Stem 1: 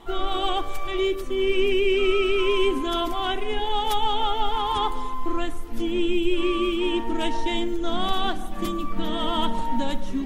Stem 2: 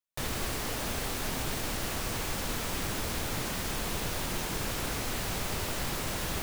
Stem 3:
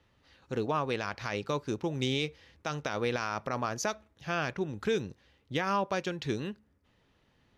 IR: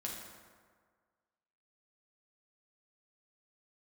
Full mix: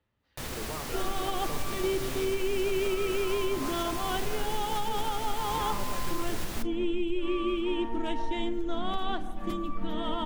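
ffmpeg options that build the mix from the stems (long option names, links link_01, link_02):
-filter_complex "[0:a]highshelf=frequency=3500:gain=-9,adelay=850,volume=-5dB[link_01];[1:a]adelay=200,volume=-3.5dB[link_02];[2:a]highshelf=frequency=4400:gain=-8.5,volume=-12.5dB,asplit=2[link_03][link_04];[link_04]volume=-6.5dB[link_05];[3:a]atrim=start_sample=2205[link_06];[link_05][link_06]afir=irnorm=-1:irlink=0[link_07];[link_01][link_02][link_03][link_07]amix=inputs=4:normalize=0,alimiter=limit=-19.5dB:level=0:latency=1:release=133"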